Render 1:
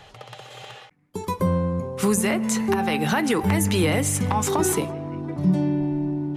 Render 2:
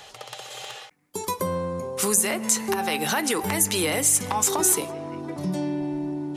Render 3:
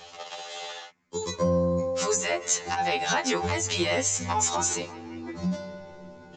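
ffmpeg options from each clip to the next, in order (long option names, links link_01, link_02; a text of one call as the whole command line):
ffmpeg -i in.wav -filter_complex "[0:a]bass=frequency=250:gain=-11,treble=frequency=4000:gain=10,asplit=2[link_01][link_02];[link_02]acompressor=threshold=-27dB:ratio=6,volume=1dB[link_03];[link_01][link_03]amix=inputs=2:normalize=0,volume=-5dB" out.wav
ffmpeg -i in.wav -af "aresample=16000,aresample=44100,afftfilt=real='re*2*eq(mod(b,4),0)':imag='im*2*eq(mod(b,4),0)':win_size=2048:overlap=0.75,volume=1.5dB" out.wav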